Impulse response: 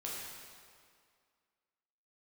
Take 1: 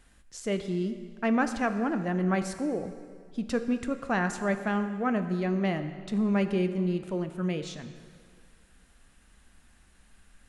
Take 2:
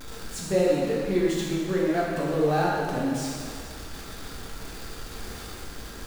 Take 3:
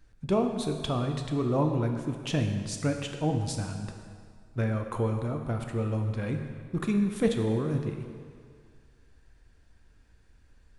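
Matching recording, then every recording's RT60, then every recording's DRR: 2; 2.1, 2.1, 2.1 s; 8.5, -5.5, 4.0 dB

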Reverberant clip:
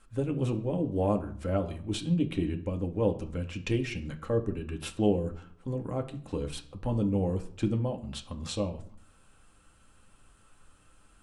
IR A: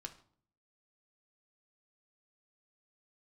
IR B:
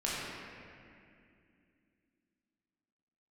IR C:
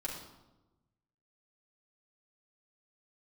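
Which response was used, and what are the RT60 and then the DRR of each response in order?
A; 0.55, 2.4, 1.0 s; 3.0, -8.0, -5.5 dB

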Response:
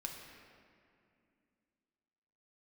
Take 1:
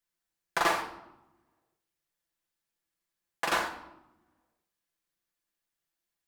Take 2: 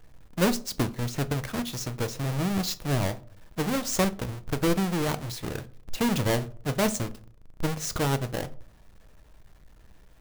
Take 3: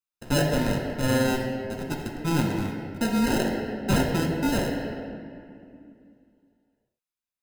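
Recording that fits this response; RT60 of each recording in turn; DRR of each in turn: 3; 0.95, 0.50, 2.4 s; 0.5, 11.0, 0.5 dB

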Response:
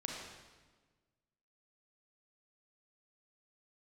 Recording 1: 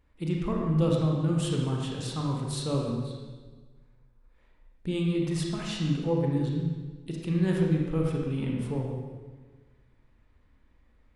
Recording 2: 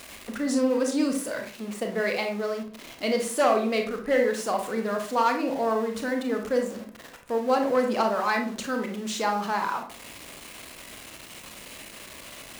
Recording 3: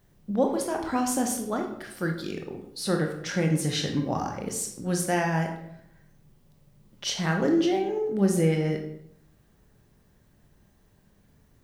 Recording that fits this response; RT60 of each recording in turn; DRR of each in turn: 1; 1.4, 0.45, 0.70 s; -1.0, 3.0, 2.5 dB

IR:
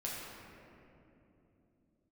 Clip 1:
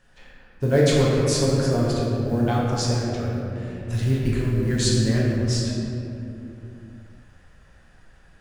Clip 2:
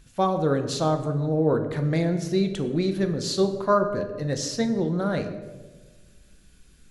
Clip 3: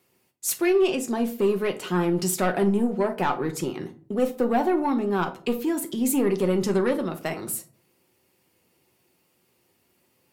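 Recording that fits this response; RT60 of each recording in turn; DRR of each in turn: 1; 3.0, 1.4, 0.45 s; -5.5, 6.0, 5.0 dB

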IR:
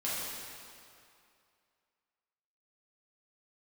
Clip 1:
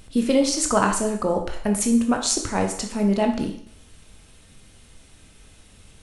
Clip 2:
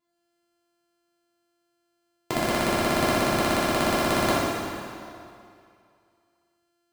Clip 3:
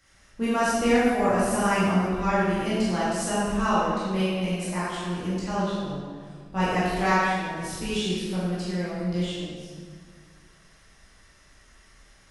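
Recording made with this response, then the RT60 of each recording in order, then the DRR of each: 2; 0.65, 2.5, 1.8 s; 3.0, -9.0, -10.5 dB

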